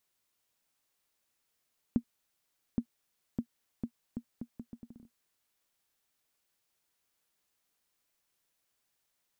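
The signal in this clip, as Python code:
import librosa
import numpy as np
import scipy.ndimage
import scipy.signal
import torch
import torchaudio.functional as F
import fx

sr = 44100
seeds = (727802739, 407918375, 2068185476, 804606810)

y = fx.bouncing_ball(sr, first_gap_s=0.82, ratio=0.74, hz=236.0, decay_ms=76.0, level_db=-16.5)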